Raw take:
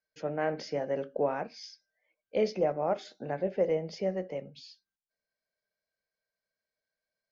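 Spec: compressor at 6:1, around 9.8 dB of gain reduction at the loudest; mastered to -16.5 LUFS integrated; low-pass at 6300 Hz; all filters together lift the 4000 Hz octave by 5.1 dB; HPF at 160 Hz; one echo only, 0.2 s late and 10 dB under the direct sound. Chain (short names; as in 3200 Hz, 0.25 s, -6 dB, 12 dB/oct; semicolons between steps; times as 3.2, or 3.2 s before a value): HPF 160 Hz; LPF 6300 Hz; bell 4000 Hz +8 dB; compressor 6:1, threshold -33 dBFS; echo 0.2 s -10 dB; gain +22.5 dB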